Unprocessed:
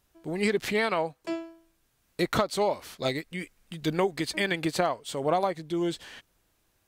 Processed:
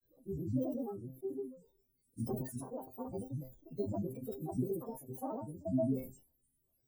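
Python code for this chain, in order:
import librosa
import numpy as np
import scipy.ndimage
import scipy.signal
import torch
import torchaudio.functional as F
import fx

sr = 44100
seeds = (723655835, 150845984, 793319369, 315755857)

y = fx.freq_snap(x, sr, grid_st=2)
y = scipy.signal.sosfilt(scipy.signal.cheby2(4, 70, [1300.0, 5800.0], 'bandstop', fs=sr, output='sos'), y)
y = fx.granulator(y, sr, seeds[0], grain_ms=100.0, per_s=20.0, spray_ms=100.0, spread_st=12)
y = fx.comb_fb(y, sr, f0_hz=130.0, decay_s=0.16, harmonics='all', damping=0.0, mix_pct=80)
y = fx.sustainer(y, sr, db_per_s=120.0)
y = F.gain(torch.from_numpy(y), 2.5).numpy()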